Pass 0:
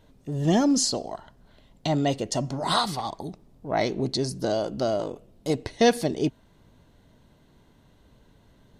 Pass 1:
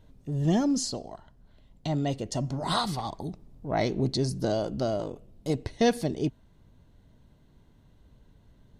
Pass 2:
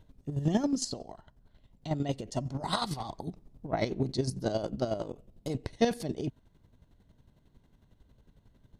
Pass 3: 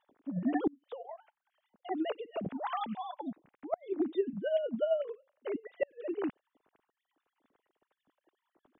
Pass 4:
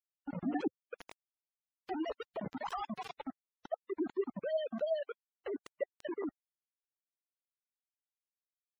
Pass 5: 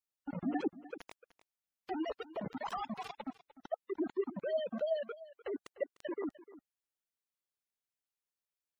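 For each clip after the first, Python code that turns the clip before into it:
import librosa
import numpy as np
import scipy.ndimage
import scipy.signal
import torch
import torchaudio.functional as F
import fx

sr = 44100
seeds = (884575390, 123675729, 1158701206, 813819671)

y1 = fx.low_shelf(x, sr, hz=180.0, db=10.0)
y1 = fx.rider(y1, sr, range_db=10, speed_s=2.0)
y1 = y1 * librosa.db_to_amplitude(-7.0)
y2 = fx.chopper(y1, sr, hz=11.0, depth_pct=60, duty_pct=30)
y3 = fx.sine_speech(y2, sr)
y3 = fx.gate_flip(y3, sr, shuts_db=-19.0, range_db=-35)
y4 = fx.hum_notches(y3, sr, base_hz=60, count=4)
y4 = fx.quant_dither(y4, sr, seeds[0], bits=6, dither='none')
y4 = fx.spec_gate(y4, sr, threshold_db=-20, keep='strong')
y4 = y4 * librosa.db_to_amplitude(-4.0)
y5 = y4 + 10.0 ** (-17.5 / 20.0) * np.pad(y4, (int(300 * sr / 1000.0), 0))[:len(y4)]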